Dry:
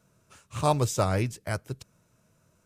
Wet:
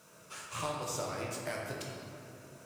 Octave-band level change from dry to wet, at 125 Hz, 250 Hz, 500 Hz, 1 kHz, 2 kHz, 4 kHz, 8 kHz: -15.5, -11.0, -9.0, -9.5, -4.0, -4.0, -4.0 dB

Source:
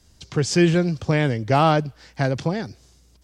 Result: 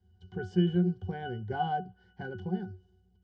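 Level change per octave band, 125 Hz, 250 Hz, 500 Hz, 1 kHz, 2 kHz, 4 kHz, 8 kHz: -11.0 dB, -9.5 dB, -14.0 dB, -10.5 dB, -15.0 dB, -15.5 dB, under -35 dB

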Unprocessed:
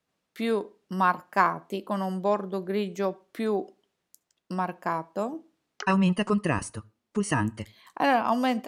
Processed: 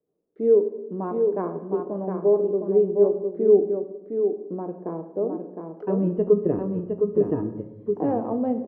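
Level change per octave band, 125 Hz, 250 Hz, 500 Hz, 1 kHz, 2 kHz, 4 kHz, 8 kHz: -0.5 dB, +2.0 dB, +10.0 dB, -9.0 dB, under -20 dB, under -30 dB, under -35 dB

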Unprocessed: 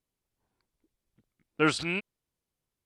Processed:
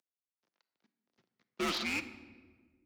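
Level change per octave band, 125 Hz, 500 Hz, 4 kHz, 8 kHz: -14.5, -9.5, -1.5, -3.5 dB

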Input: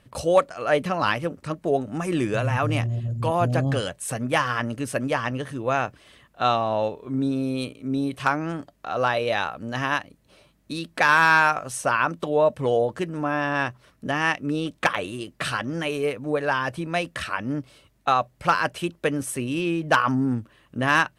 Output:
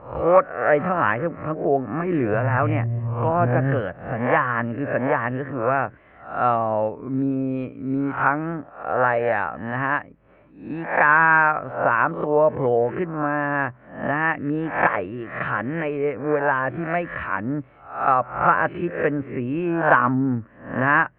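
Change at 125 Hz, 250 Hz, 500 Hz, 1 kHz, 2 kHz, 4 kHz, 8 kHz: +2.0 dB, +2.0 dB, +3.0 dB, +3.0 dB, +2.5 dB, under -15 dB, under -40 dB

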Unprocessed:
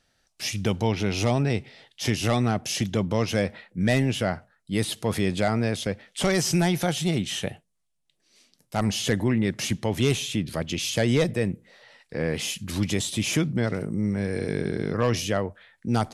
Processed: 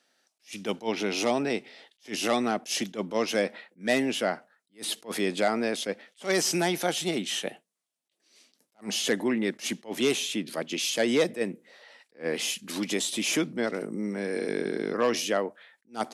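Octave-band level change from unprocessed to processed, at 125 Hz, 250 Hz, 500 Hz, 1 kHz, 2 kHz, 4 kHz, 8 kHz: -17.0, -4.5, -1.0, -1.5, -0.5, -0.5, -0.5 dB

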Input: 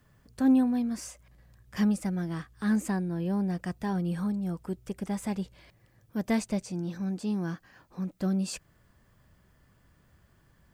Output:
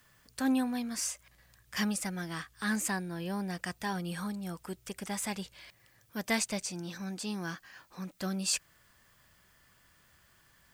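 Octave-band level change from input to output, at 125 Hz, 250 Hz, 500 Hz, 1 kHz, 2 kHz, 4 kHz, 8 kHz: -7.5, -7.0, -4.0, +0.5, +5.0, +7.5, +8.5 dB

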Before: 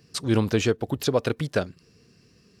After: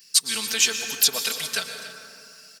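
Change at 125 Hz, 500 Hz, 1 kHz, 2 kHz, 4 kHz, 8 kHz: -24.5, -13.0, -4.0, +5.5, +12.0, +16.5 dB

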